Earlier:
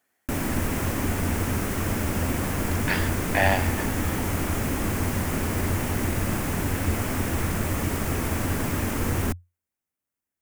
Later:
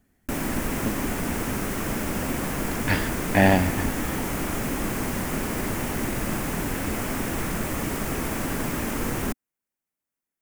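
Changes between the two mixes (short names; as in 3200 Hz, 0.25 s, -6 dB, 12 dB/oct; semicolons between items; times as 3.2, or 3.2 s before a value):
speech: remove HPF 630 Hz 12 dB/oct; master: add bell 88 Hz -15 dB 0.36 oct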